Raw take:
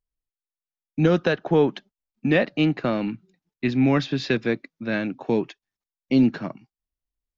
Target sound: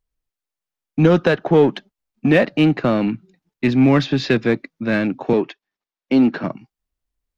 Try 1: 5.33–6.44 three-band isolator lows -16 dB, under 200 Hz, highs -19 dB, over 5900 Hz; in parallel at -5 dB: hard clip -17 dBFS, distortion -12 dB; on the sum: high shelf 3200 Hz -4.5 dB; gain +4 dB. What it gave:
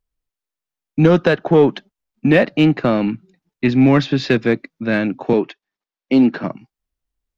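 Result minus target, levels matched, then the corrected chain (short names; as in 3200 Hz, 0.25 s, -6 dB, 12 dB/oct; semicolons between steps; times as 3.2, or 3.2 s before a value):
hard clip: distortion -6 dB
5.33–6.44 three-band isolator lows -16 dB, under 200 Hz, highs -19 dB, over 5900 Hz; in parallel at -5 dB: hard clip -24.5 dBFS, distortion -5 dB; on the sum: high shelf 3200 Hz -4.5 dB; gain +4 dB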